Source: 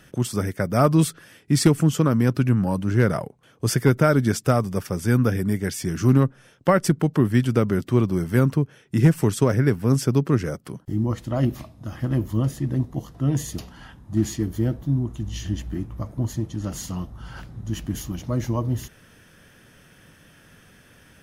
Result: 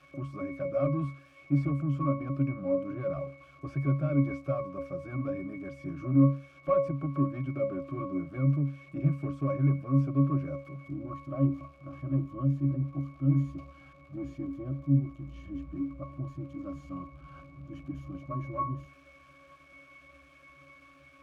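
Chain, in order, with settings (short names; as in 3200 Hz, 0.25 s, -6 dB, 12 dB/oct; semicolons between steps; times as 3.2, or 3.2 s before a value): switching spikes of -18.5 dBFS; overdrive pedal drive 22 dB, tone 2300 Hz, clips at -5.5 dBFS; octave resonator C#, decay 0.33 s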